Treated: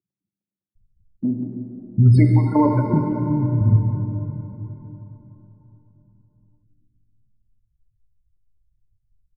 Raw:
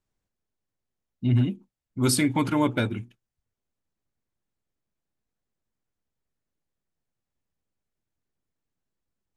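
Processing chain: RIAA curve playback; spectral gate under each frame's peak -25 dB strong; bell 770 Hz +6.5 dB 0.73 oct; compressor, threshold -18 dBFS, peak gain reduction 11.5 dB; step gate "x.xx.x..x...x" 147 bpm -12 dB; bands offset in time highs, lows 0.75 s, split 230 Hz; plate-style reverb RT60 4 s, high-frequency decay 0.65×, DRR 2 dB; gain +8.5 dB

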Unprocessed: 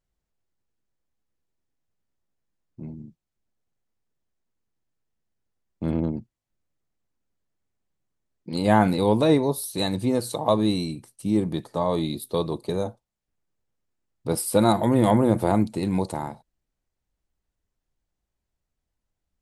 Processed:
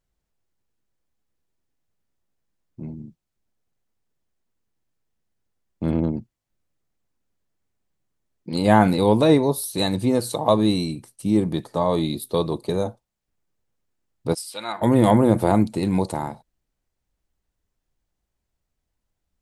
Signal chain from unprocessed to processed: 14.33–14.81 band-pass 6700 Hz -> 1500 Hz, Q 1.7; gain +3 dB

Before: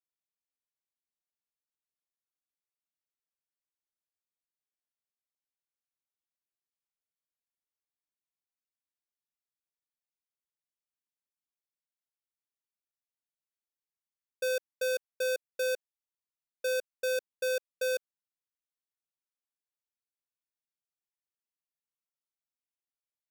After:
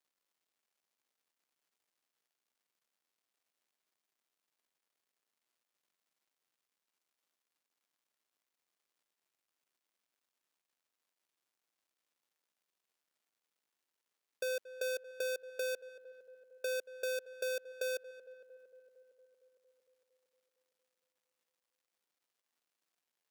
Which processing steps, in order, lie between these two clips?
darkening echo 0.229 s, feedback 73%, low-pass 1600 Hz, level -18.5 dB; compressor, threshold -36 dBFS, peak gain reduction 6.5 dB; crackle 430/s -72 dBFS; HPF 240 Hz 12 dB/oct

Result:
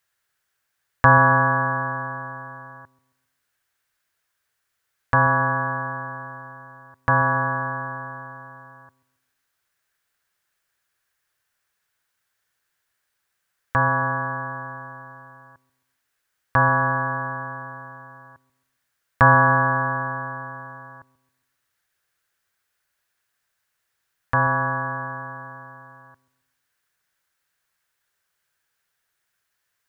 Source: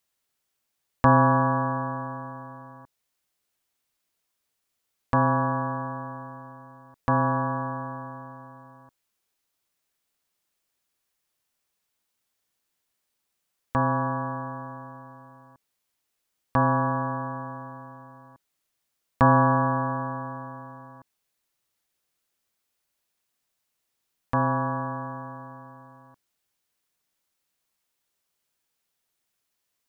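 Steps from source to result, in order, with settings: fifteen-band EQ 100 Hz +5 dB, 250 Hz -7 dB, 1600 Hz +12 dB; on a send: dark delay 0.135 s, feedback 39%, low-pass 580 Hz, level -15.5 dB; on the sum: gain +1.5 dB

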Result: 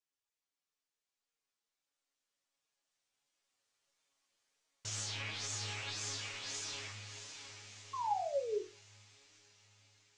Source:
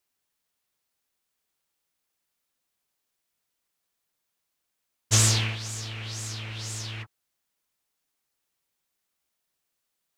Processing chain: Doppler pass-by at 4.19, 26 m/s, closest 24 m; LPF 8000 Hz 24 dB/oct; on a send at -13 dB: reverb RT60 2.6 s, pre-delay 7 ms; on the sum: compressor, threshold -33 dBFS, peak gain reduction 13.5 dB; tone controls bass -7 dB, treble +2 dB; limiter -32.5 dBFS, peak gain reduction 11 dB; diffused feedback echo 0.682 s, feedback 56%, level -8 dB; painted sound fall, 7.93–8.62, 370–1100 Hz -37 dBFS; resonator bank F#2 minor, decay 0.31 s; flange 1.5 Hz, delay 6.3 ms, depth 2.6 ms, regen +41%; gain +17.5 dB

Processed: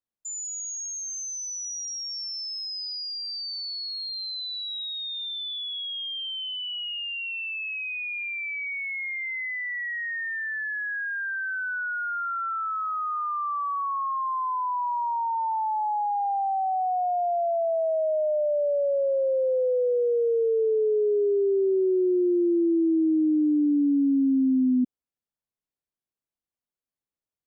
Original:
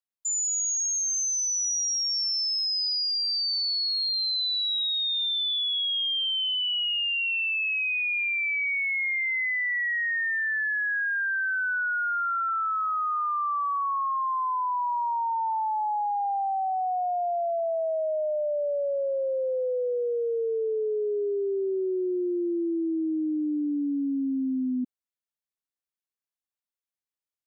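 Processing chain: tilt shelf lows +7 dB

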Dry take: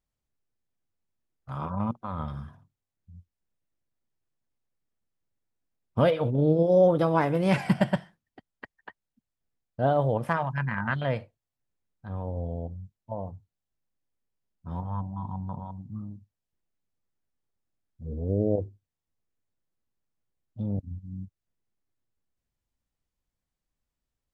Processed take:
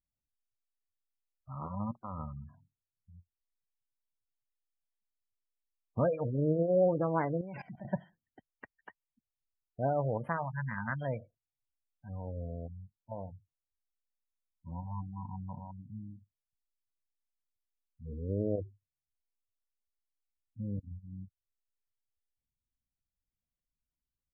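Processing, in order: spectral gate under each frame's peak -20 dB strong; 7.41–7.85 level quantiser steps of 18 dB; gain -7 dB

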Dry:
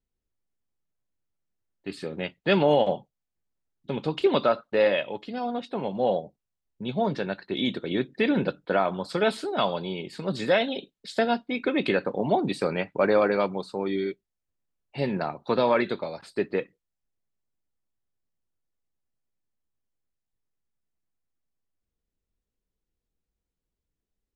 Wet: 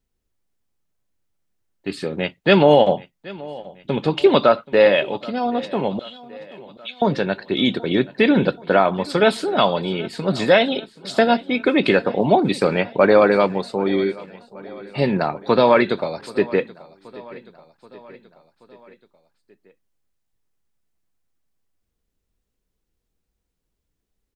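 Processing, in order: 5.99–7.02 steep high-pass 1700 Hz; feedback echo 0.779 s, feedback 57%, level -20.5 dB; gain +8 dB

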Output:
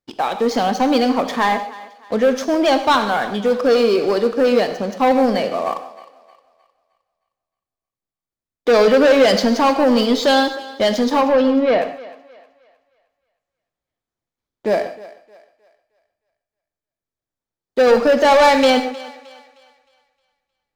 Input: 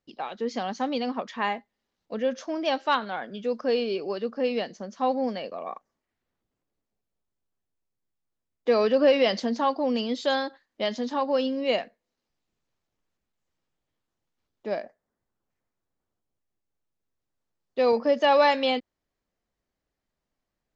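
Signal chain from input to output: notch 2800 Hz, Q 10; sample leveller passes 3; 11.21–11.82 air absorption 260 m; thinning echo 0.31 s, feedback 39%, high-pass 390 Hz, level -18 dB; non-linear reverb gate 0.17 s flat, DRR 8.5 dB; gain +2.5 dB

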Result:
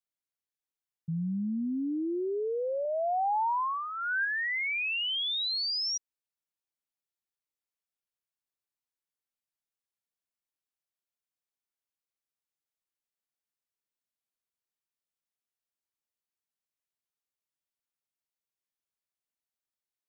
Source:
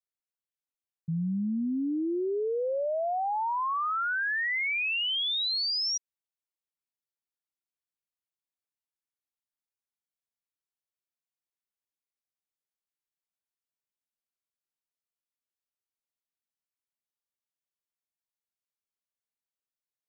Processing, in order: 2.85–4.25 comb 1.2 ms, depth 52%; gain -2 dB

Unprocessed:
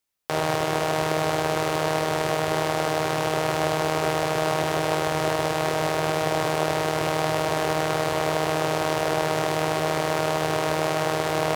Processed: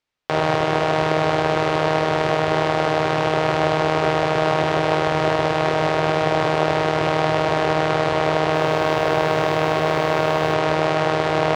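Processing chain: LPF 3900 Hz 12 dB/oct; 8.35–10.54 lo-fi delay 0.196 s, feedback 55%, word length 7-bit, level -14 dB; gain +5 dB

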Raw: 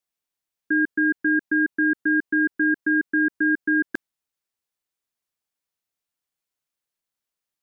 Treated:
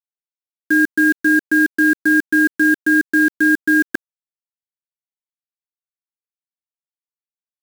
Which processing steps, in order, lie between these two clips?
de-hum 92.84 Hz, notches 7; bit-crush 6-bit; gain +6.5 dB

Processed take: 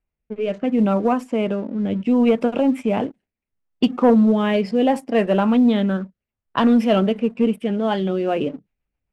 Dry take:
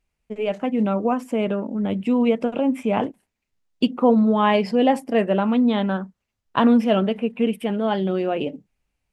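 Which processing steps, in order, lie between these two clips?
rotary speaker horn 0.7 Hz, later 7.5 Hz, at 7.81; sample leveller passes 1; low-pass opened by the level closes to 2000 Hz, open at -15.5 dBFS

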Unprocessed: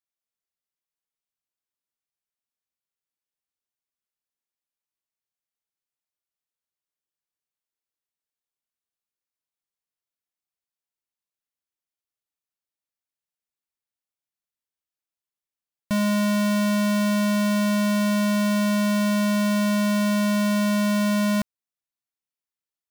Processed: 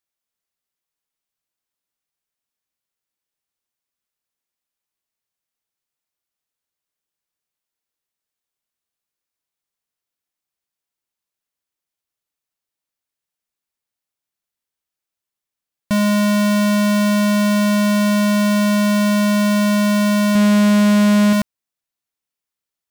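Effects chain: 20.35–21.33 low shelf 220 Hz +6.5 dB; Doppler distortion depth 0.1 ms; gain +6 dB

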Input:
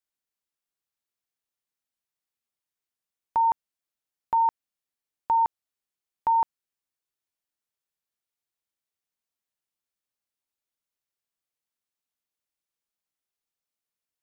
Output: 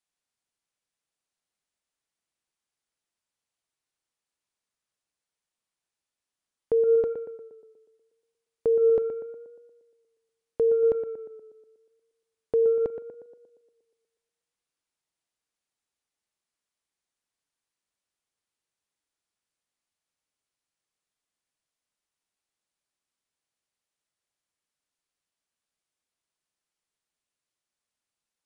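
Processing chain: speed mistake 15 ips tape played at 7.5 ips; tape echo 0.119 s, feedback 61%, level -7 dB, low-pass 1600 Hz

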